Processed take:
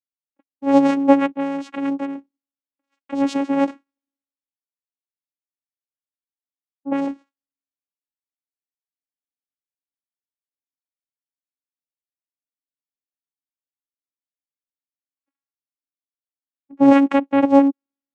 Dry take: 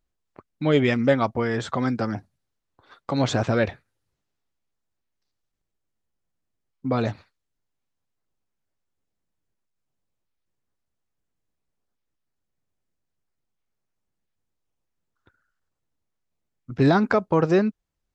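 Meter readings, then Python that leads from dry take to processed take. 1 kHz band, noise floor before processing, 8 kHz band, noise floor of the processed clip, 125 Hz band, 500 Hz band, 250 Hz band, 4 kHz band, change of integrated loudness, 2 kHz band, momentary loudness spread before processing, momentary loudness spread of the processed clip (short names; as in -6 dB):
+5.0 dB, -80 dBFS, n/a, under -85 dBFS, -17.5 dB, +1.5 dB, +7.0 dB, -4.5 dB, +4.5 dB, -2.5 dB, 10 LU, 14 LU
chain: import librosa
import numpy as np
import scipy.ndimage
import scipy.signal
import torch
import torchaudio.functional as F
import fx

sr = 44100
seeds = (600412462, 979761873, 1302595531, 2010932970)

y = fx.vocoder(x, sr, bands=4, carrier='saw', carrier_hz=277.0)
y = fx.band_widen(y, sr, depth_pct=70)
y = y * 10.0 ** (3.5 / 20.0)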